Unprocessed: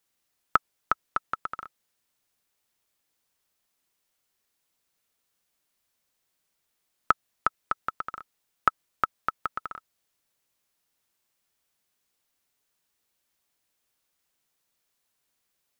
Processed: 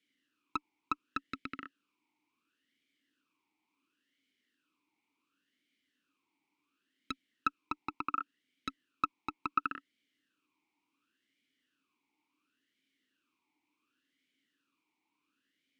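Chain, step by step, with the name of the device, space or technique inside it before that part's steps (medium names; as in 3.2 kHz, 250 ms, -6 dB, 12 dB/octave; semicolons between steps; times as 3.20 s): talk box (valve stage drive 25 dB, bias 0.55; talking filter i-u 0.7 Hz); trim +18 dB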